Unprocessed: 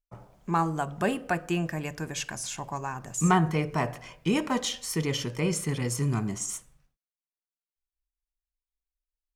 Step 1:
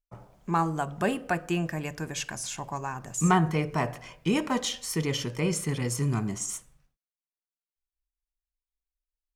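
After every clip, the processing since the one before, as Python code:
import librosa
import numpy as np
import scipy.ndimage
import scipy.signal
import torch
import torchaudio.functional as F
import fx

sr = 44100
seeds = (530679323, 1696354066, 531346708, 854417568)

y = x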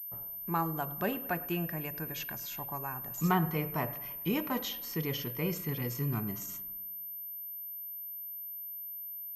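y = fx.echo_bbd(x, sr, ms=104, stages=2048, feedback_pct=64, wet_db=-20.0)
y = fx.pwm(y, sr, carrier_hz=13000.0)
y = y * 10.0 ** (-6.0 / 20.0)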